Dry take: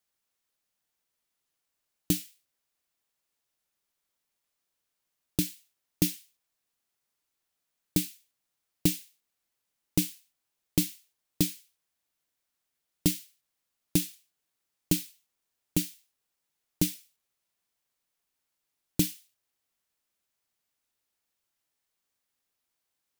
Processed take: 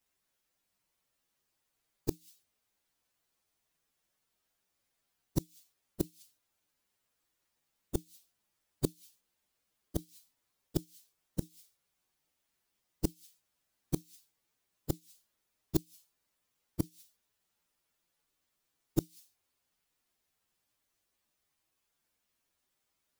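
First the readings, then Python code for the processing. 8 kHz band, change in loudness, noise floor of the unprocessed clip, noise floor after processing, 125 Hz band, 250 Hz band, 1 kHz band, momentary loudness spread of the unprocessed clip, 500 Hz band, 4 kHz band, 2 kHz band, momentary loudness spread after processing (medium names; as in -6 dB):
-14.5 dB, -8.5 dB, -83 dBFS, -82 dBFS, -6.0 dB, -7.5 dB, 0.0 dB, 10 LU, +0.5 dB, -15.5 dB, -16.5 dB, 20 LU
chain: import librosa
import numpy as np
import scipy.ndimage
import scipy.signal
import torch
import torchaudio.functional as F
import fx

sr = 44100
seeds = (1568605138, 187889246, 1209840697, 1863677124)

y = fx.partial_stretch(x, sr, pct=119)
y = fx.gate_flip(y, sr, shuts_db=-24.0, range_db=-30)
y = F.gain(torch.from_numpy(y), 9.0).numpy()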